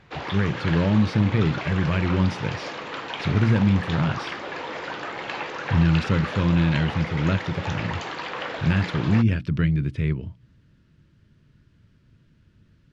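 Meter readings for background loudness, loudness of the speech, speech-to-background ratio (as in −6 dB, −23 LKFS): −32.0 LKFS, −23.5 LKFS, 8.5 dB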